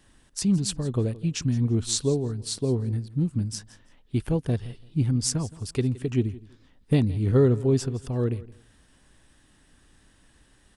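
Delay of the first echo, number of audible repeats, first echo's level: 0.168 s, 2, -19.5 dB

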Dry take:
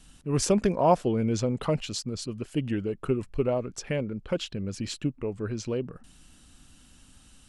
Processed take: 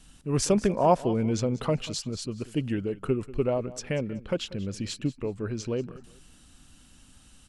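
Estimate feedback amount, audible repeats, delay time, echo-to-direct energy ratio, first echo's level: 25%, 2, 0.189 s, -17.5 dB, -18.0 dB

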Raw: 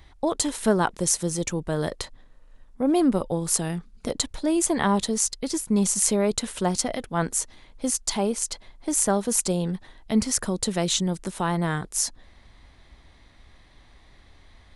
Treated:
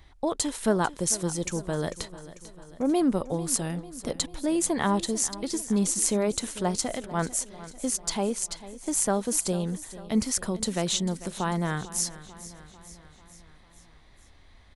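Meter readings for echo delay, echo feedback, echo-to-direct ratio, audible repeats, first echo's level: 0.445 s, 58%, -14.5 dB, 4, -16.5 dB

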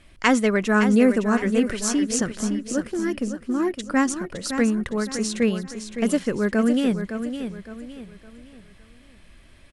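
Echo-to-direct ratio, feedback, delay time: -8.5 dB, 36%, 0.562 s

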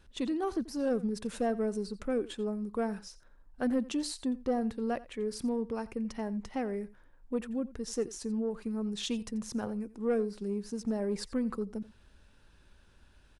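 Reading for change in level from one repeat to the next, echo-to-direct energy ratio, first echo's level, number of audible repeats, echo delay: no steady repeat, -19.0 dB, -19.0 dB, 1, 87 ms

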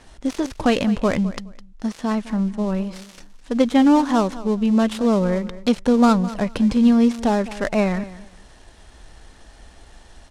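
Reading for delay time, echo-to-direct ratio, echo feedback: 0.209 s, -16.5 dB, 20%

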